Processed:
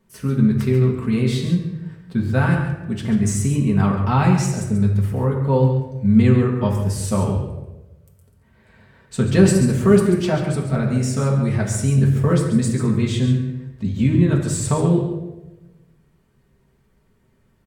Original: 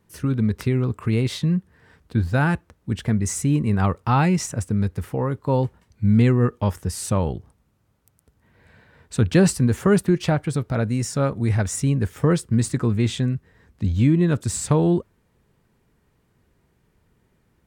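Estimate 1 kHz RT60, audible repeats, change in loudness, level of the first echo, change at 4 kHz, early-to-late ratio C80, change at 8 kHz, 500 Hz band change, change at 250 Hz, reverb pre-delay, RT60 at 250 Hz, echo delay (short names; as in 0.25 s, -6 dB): 0.85 s, 1, +3.0 dB, -10.0 dB, +1.0 dB, 6.0 dB, +1.0 dB, +3.0 dB, +3.5 dB, 4 ms, 1.1 s, 0.138 s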